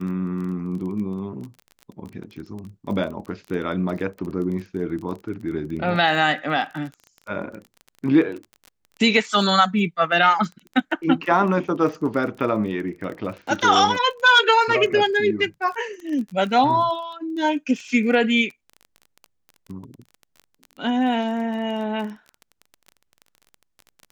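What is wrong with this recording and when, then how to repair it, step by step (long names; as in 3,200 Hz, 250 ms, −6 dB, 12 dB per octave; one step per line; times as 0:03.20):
surface crackle 22 per second −31 dBFS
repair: click removal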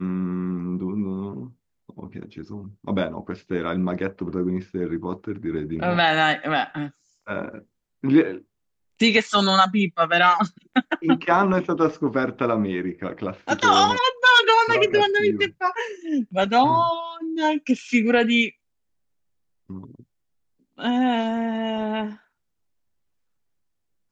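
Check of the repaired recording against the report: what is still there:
none of them is left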